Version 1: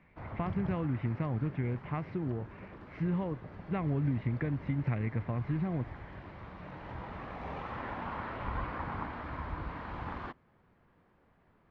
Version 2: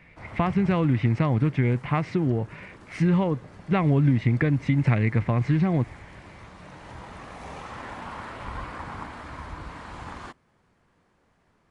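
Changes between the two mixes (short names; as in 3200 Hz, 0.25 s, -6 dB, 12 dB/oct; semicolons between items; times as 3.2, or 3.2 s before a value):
speech +10.5 dB; master: remove air absorption 330 m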